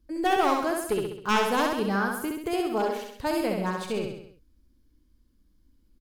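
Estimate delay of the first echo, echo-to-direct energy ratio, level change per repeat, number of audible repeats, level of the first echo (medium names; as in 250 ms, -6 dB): 66 ms, -2.0 dB, -5.5 dB, 5, -3.5 dB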